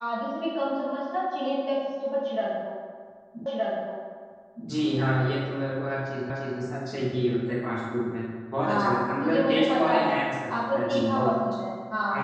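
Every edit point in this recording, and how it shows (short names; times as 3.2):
3.46 repeat of the last 1.22 s
6.3 repeat of the last 0.3 s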